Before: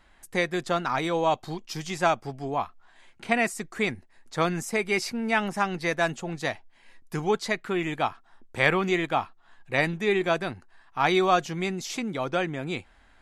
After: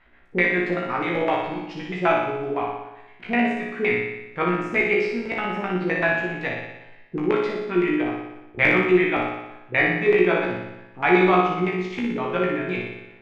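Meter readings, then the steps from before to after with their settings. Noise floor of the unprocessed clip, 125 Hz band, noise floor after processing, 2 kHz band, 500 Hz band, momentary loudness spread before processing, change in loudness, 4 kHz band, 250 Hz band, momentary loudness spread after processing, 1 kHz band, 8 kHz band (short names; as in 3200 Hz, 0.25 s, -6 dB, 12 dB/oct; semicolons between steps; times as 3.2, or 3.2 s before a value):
-58 dBFS, +2.5 dB, -49 dBFS, +5.5 dB, +5.0 dB, 12 LU, +4.5 dB, -2.5 dB, +6.5 dB, 14 LU, +2.0 dB, under -15 dB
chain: LFO low-pass square 7.8 Hz 370–2300 Hz; resonator 60 Hz, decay 0.34 s, harmonics all, mix 100%; flutter echo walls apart 10.2 m, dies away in 0.97 s; gain +8 dB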